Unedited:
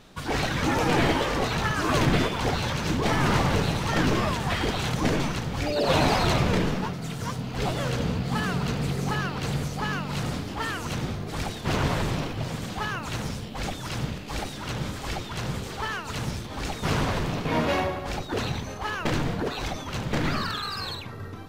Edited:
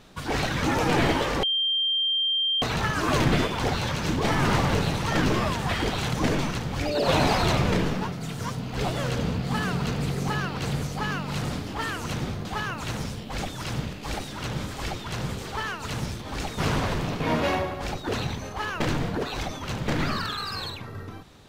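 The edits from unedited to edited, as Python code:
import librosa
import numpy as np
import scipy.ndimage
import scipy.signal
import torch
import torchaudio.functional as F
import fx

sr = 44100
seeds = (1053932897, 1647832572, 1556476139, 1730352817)

y = fx.edit(x, sr, fx.insert_tone(at_s=1.43, length_s=1.19, hz=3170.0, db=-21.5),
    fx.cut(start_s=11.26, length_s=1.44), tone=tone)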